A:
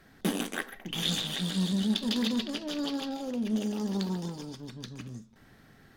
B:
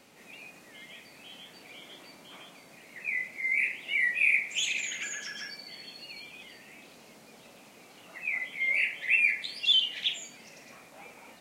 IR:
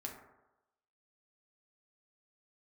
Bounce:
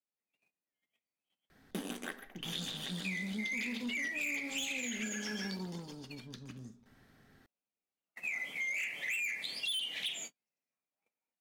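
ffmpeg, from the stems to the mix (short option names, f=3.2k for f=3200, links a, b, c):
-filter_complex "[0:a]adelay=1500,volume=-8.5dB,asplit=2[a][b];[b]volume=-8dB[c];[1:a]agate=range=-47dB:threshold=-42dB:ratio=16:detection=peak,asoftclip=type=tanh:threshold=-26dB,highshelf=f=12k:g=6.5,volume=0.5dB[d];[2:a]atrim=start_sample=2205[e];[c][e]afir=irnorm=-1:irlink=0[f];[a][d][f]amix=inputs=3:normalize=0,acompressor=threshold=-35dB:ratio=6"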